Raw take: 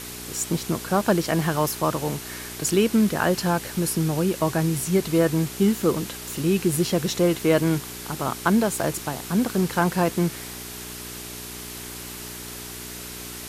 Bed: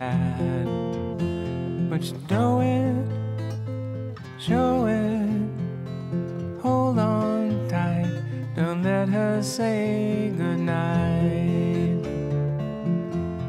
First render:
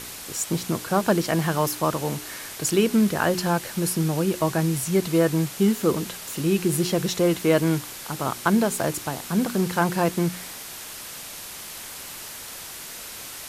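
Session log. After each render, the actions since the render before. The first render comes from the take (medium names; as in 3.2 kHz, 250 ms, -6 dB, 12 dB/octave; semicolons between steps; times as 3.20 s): de-hum 60 Hz, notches 7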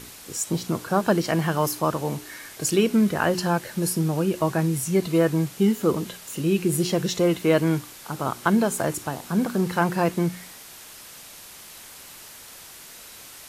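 noise print and reduce 6 dB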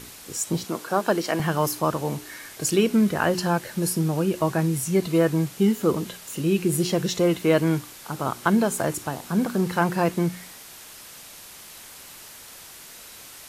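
0.64–1.40 s: high-pass 270 Hz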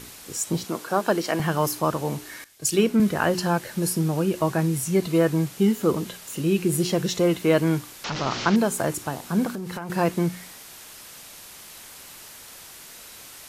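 2.44–3.00 s: three bands expanded up and down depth 70%; 8.04–8.56 s: one-bit delta coder 32 kbps, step -23.5 dBFS; 9.50–9.90 s: compression 16:1, threshold -28 dBFS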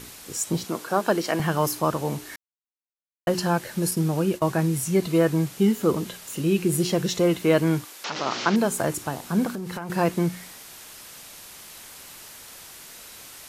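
2.36–3.27 s: mute; 3.91–4.53 s: expander -30 dBFS; 7.84–8.64 s: high-pass 410 Hz -> 170 Hz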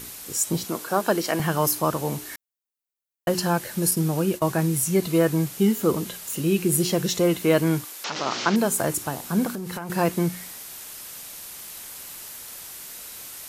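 treble shelf 9 kHz +10 dB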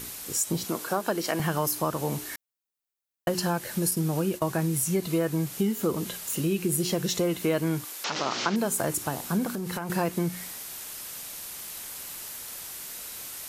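compression 3:1, threshold -24 dBFS, peak gain reduction 7.5 dB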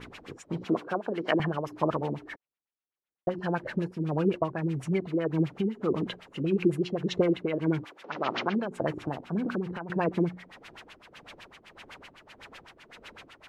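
LFO low-pass sine 7.9 Hz 310–3000 Hz; tremolo triangle 1.7 Hz, depth 60%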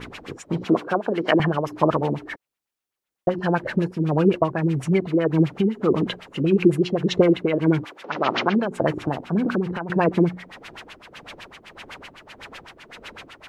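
trim +8 dB; peak limiter -2 dBFS, peak gain reduction 1.5 dB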